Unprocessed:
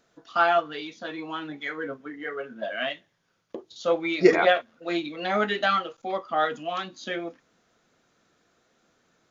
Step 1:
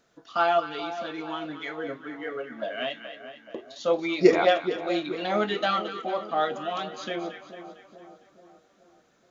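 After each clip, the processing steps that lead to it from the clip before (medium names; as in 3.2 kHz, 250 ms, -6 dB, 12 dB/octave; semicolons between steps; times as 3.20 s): two-band feedback delay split 1 kHz, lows 427 ms, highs 227 ms, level -11.5 dB; dynamic bell 1.7 kHz, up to -6 dB, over -40 dBFS, Q 1.7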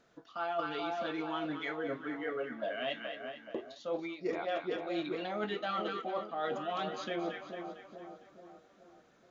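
low-pass 3.8 kHz 6 dB/octave; reverse; compression 12:1, threshold -32 dBFS, peak gain reduction 21.5 dB; reverse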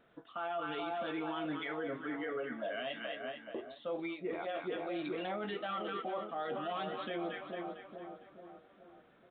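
peak limiter -31 dBFS, peak gain reduction 8.5 dB; resampled via 8 kHz; trim +1 dB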